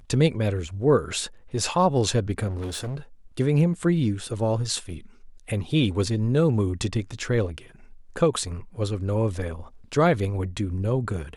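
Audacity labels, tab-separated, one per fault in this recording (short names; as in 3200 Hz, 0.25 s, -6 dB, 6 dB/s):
2.470000	2.970000	clipped -27.5 dBFS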